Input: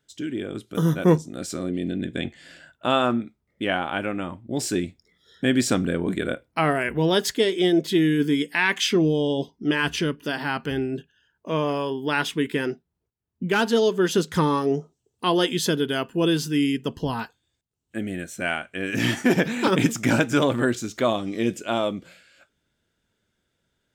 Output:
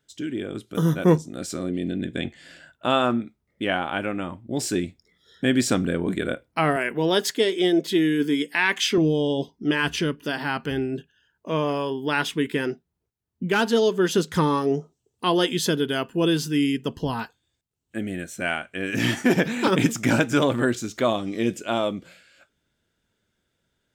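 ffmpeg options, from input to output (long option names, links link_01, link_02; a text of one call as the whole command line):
ffmpeg -i in.wav -filter_complex "[0:a]asettb=1/sr,asplit=3[link_01][link_02][link_03];[link_01]atrim=end=6.764[link_04];[link_02]atrim=start=6.76:end=8.98,asetpts=PTS-STARTPTS,afade=type=in:duration=0.004:curve=qsin,afade=type=out:start_time=2.216:duration=0.004:curve=qsin,highpass=200[link_05];[link_03]atrim=start=8.976[link_06];[link_04][link_05]acrossfade=duration=0.004:curve1=hsin:curve2=qsin[link_07];[link_07][link_06]acrossfade=duration=0.004:curve1=qsin:curve2=hsin" out.wav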